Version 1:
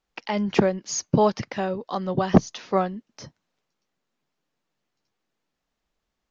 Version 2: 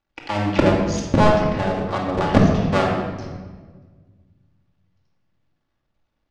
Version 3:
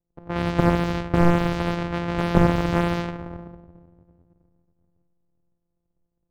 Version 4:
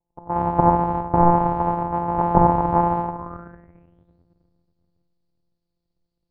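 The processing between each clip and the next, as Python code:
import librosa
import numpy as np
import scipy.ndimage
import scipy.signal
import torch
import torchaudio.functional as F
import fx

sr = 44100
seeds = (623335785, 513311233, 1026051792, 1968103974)

y1 = fx.cycle_switch(x, sr, every=2, mode='muted')
y1 = fx.air_absorb(y1, sr, metres=120.0)
y1 = fx.room_shoebox(y1, sr, seeds[0], volume_m3=1400.0, walls='mixed', distance_m=2.4)
y1 = y1 * librosa.db_to_amplitude(2.5)
y2 = np.r_[np.sort(y1[:len(y1) // 256 * 256].reshape(-1, 256), axis=1).ravel(), y1[len(y1) // 256 * 256:]]
y2 = fx.env_lowpass(y2, sr, base_hz=590.0, full_db=-13.5)
y2 = fx.slew_limit(y2, sr, full_power_hz=450.0)
y2 = y2 * librosa.db_to_amplitude(-2.5)
y3 = fx.filter_sweep_lowpass(y2, sr, from_hz=900.0, to_hz=4500.0, start_s=3.14, end_s=4.19, q=7.5)
y3 = y3 * librosa.db_to_amplitude(-2.0)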